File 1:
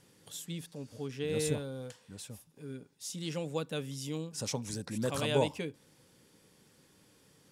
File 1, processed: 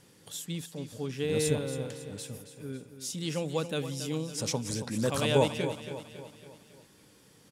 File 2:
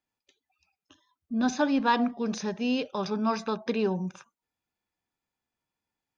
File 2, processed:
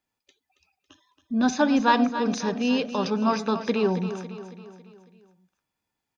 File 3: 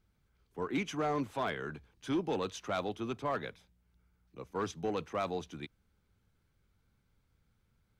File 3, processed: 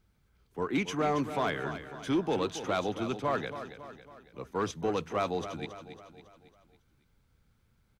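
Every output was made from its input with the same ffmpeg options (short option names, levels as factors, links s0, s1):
-af "aecho=1:1:276|552|828|1104|1380:0.282|0.141|0.0705|0.0352|0.0176,volume=1.58"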